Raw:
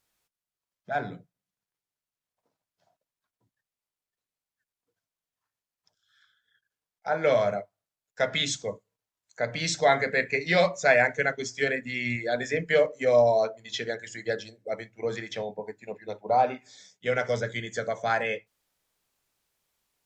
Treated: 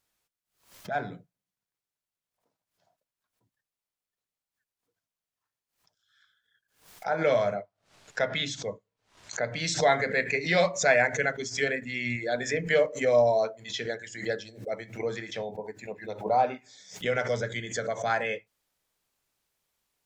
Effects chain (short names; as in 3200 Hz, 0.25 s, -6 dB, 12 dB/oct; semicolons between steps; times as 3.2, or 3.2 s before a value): 7.53–9.46 air absorption 91 m; backwards sustainer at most 130 dB/s; gain -1.5 dB